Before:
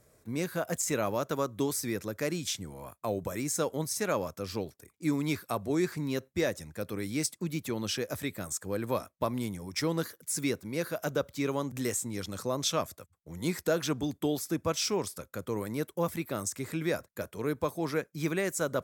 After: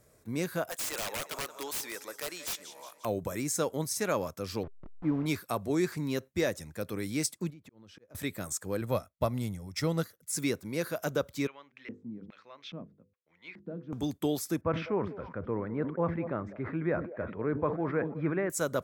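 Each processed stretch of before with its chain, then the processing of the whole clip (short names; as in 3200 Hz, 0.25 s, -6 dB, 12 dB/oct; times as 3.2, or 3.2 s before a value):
0.69–3.05 HPF 690 Hz + feedback echo 0.177 s, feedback 52%, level -15 dB + wrapped overs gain 28.5 dB
4.63–5.26 level-crossing sampler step -37.5 dBFS + LPF 1200 Hz + notch 400 Hz
7.5–8.15 LPF 1300 Hz 6 dB/oct + auto swell 0.774 s + compressor 5:1, threshold -50 dBFS
8.81–10.33 low shelf 170 Hz +8.5 dB + comb 1.5 ms, depth 34% + upward expander, over -46 dBFS
11.47–13.93 notches 50/100/150/200/250/300/350/400/450/500 Hz + LFO band-pass square 1.2 Hz 210–2400 Hz + air absorption 240 m
14.61–18.5 LPF 1900 Hz 24 dB/oct + delay with a stepping band-pass 0.101 s, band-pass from 210 Hz, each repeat 1.4 oct, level -10.5 dB + sustainer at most 90 dB/s
whole clip: dry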